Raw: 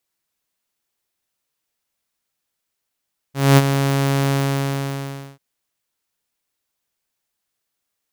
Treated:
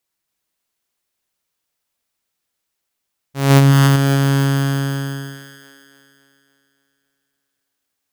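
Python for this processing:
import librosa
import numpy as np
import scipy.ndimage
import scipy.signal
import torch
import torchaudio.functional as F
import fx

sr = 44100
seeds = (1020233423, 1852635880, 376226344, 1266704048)

p1 = x + fx.echo_split(x, sr, split_hz=300.0, low_ms=122, high_ms=282, feedback_pct=52, wet_db=-5, dry=0)
y = fx.env_flatten(p1, sr, amount_pct=50, at=(3.5, 3.96))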